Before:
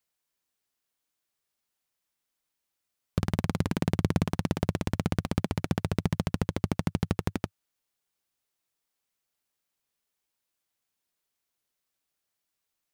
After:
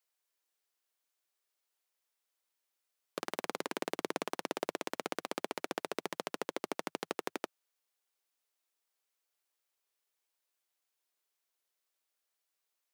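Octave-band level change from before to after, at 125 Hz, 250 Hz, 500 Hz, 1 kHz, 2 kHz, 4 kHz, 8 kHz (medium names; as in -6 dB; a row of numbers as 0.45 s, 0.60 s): -30.5 dB, -14.0 dB, -3.0 dB, -2.0 dB, -2.0 dB, -2.0 dB, -2.0 dB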